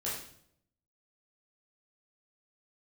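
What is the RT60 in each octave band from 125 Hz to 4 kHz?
0.95, 0.85, 0.70, 0.60, 0.55, 0.55 seconds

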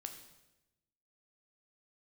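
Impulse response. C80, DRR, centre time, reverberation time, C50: 10.5 dB, 5.0 dB, 19 ms, 1.0 s, 8.5 dB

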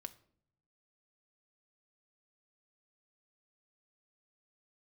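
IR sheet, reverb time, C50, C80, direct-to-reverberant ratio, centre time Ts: 0.60 s, 17.5 dB, 21.5 dB, 8.5 dB, 4 ms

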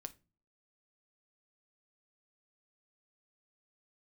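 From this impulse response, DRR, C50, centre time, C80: 7.5 dB, 20.0 dB, 3 ms, 27.0 dB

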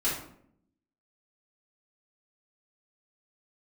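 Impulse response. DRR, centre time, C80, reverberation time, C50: −10.0 dB, 42 ms, 8.0 dB, 0.65 s, 3.5 dB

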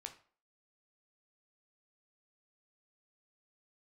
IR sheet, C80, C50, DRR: 16.5 dB, 12.0 dB, 4.5 dB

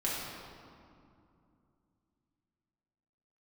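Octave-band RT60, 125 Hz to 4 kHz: 3.6, 3.5, 2.6, 2.5, 1.8, 1.4 seconds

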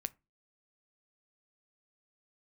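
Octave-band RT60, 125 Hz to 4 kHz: 0.35, 0.35, 0.25, 0.25, 0.20, 0.15 seconds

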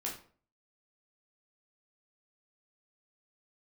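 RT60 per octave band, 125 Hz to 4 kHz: 0.55, 0.50, 0.50, 0.45, 0.35, 0.30 seconds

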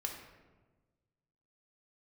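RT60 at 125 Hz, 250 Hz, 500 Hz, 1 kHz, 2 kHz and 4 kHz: 1.9, 1.6, 1.4, 1.2, 0.95, 0.70 seconds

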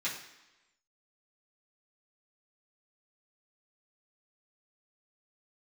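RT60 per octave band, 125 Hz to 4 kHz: 0.85, 0.95, 1.0, 1.0, 1.1, 1.0 seconds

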